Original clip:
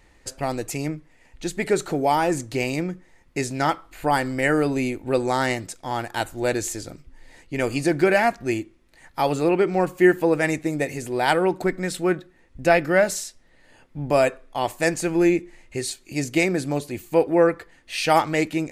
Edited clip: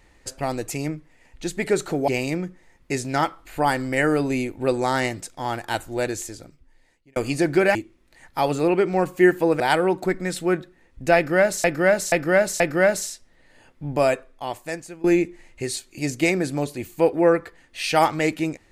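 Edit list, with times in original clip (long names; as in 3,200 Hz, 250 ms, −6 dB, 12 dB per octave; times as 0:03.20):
0:02.08–0:02.54: remove
0:06.22–0:07.62: fade out
0:08.21–0:08.56: remove
0:10.41–0:11.18: remove
0:12.74–0:13.22: repeat, 4 plays
0:14.06–0:15.18: fade out, to −20.5 dB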